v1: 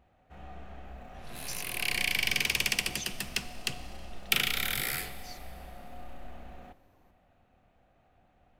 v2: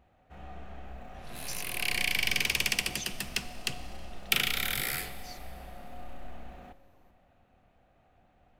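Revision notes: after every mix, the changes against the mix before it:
first sound: send +8.5 dB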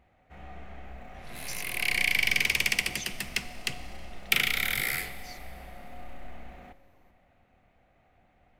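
master: add parametric band 2,100 Hz +8.5 dB 0.3 octaves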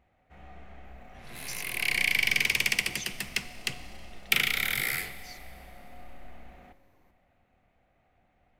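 first sound −4.0 dB

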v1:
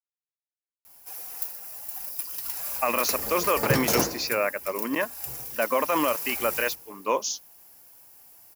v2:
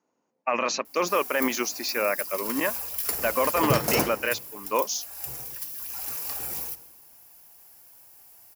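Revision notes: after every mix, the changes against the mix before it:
speech: entry −2.35 s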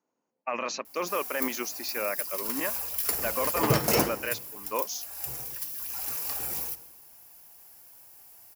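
speech −6.0 dB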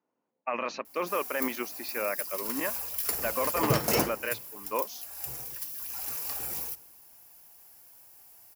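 speech: add low-pass filter 3,400 Hz 12 dB per octave
background: send −7.0 dB

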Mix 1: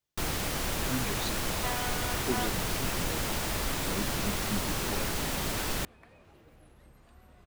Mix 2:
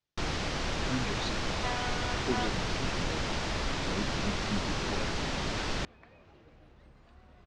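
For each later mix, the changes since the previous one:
master: add low-pass filter 5,900 Hz 24 dB per octave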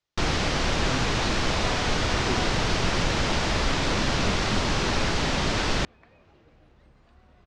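first sound +8.0 dB

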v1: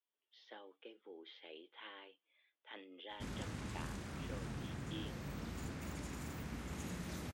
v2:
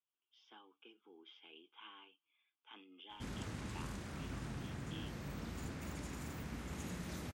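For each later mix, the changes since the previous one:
speech: add phaser with its sweep stopped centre 2,800 Hz, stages 8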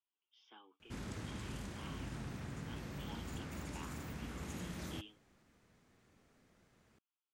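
background: entry −2.30 s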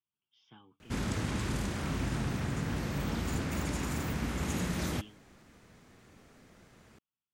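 speech: remove high-pass filter 330 Hz 24 dB per octave
background +11.5 dB

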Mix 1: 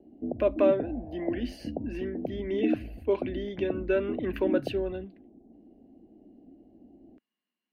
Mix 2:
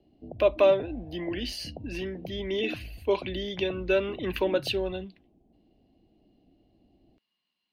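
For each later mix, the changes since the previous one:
speech +9.5 dB
master: add drawn EQ curve 150 Hz 0 dB, 240 Hz −13 dB, 960 Hz −3 dB, 1,600 Hz −9 dB, 3,900 Hz +6 dB, 8,100 Hz +2 dB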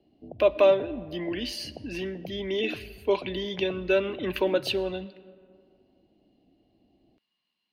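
background: add low-shelf EQ 87 Hz −9.5 dB
reverb: on, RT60 2.3 s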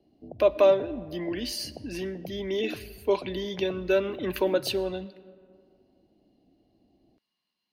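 speech: add high-shelf EQ 4,000 Hz +8 dB
master: add parametric band 2,900 Hz −7.5 dB 0.98 octaves

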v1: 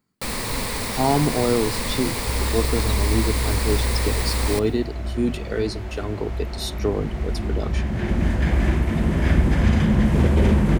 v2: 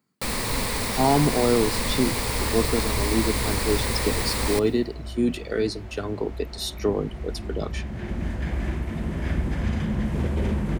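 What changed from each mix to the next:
speech: add high-pass filter 120 Hz 24 dB per octave
second sound −8.0 dB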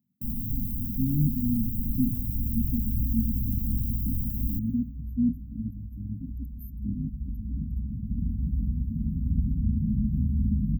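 master: add linear-phase brick-wall band-stop 280–13,000 Hz

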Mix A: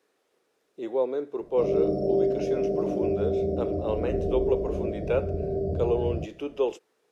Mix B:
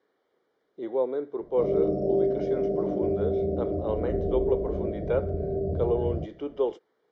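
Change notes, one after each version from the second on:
speech: add Butterworth band-reject 2,600 Hz, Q 4.6
master: add high-frequency loss of the air 220 metres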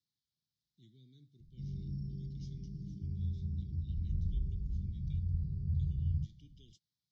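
speech: add parametric band 690 Hz −9.5 dB 1.3 octaves
master: add elliptic band-stop filter 140–4,400 Hz, stop band 70 dB

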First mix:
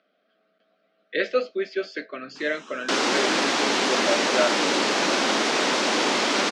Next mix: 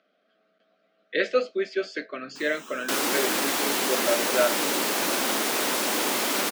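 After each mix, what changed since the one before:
second sound −4.5 dB
master: remove low-pass filter 6,200 Hz 24 dB per octave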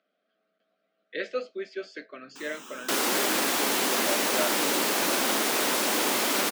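speech −8.0 dB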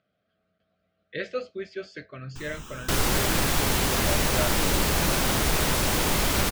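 master: remove Butterworth high-pass 230 Hz 36 dB per octave

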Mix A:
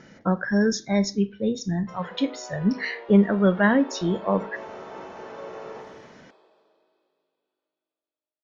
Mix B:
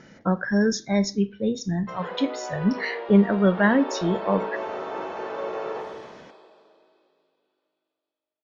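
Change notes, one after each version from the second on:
background +7.5 dB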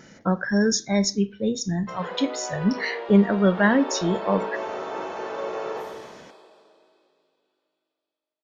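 master: remove high-frequency loss of the air 110 metres

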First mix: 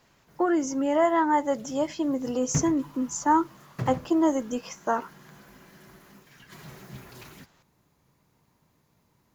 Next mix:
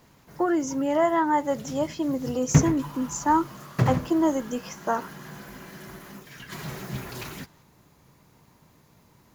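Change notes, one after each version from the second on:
background +9.5 dB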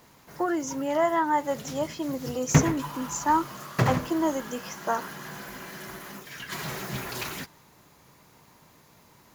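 background +5.0 dB
master: add low-shelf EQ 330 Hz −8.5 dB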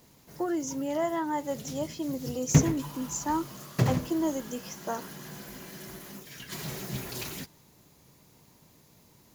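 master: add parametric band 1,300 Hz −10 dB 2.1 octaves

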